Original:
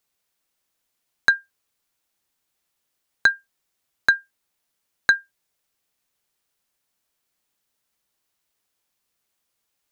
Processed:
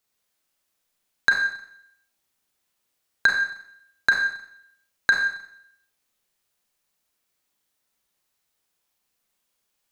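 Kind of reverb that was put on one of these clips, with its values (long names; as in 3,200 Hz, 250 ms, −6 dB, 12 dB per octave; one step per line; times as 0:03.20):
four-comb reverb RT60 0.71 s, combs from 30 ms, DRR 0.5 dB
level −2 dB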